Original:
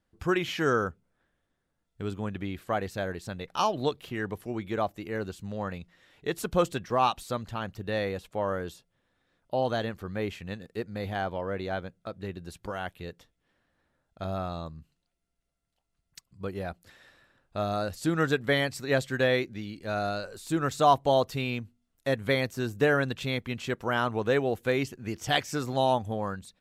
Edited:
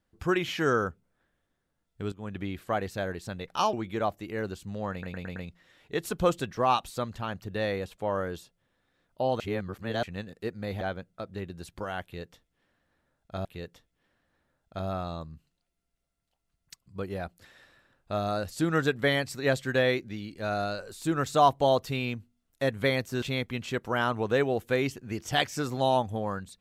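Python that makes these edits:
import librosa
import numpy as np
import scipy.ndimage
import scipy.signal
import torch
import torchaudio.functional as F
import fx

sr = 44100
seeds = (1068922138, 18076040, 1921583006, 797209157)

y = fx.edit(x, sr, fx.fade_in_from(start_s=2.12, length_s=0.27, floor_db=-17.5),
    fx.cut(start_s=3.73, length_s=0.77),
    fx.stutter(start_s=5.69, slice_s=0.11, count=5),
    fx.reverse_span(start_s=9.73, length_s=0.63),
    fx.cut(start_s=11.14, length_s=0.54),
    fx.repeat(start_s=12.9, length_s=1.42, count=2),
    fx.cut(start_s=22.67, length_s=0.51), tone=tone)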